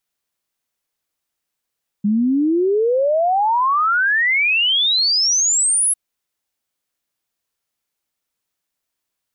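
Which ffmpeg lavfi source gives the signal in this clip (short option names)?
-f lavfi -i "aevalsrc='0.211*clip(min(t,3.9-t)/0.01,0,1)*sin(2*PI*200*3.9/log(11000/200)*(exp(log(11000/200)*t/3.9)-1))':d=3.9:s=44100"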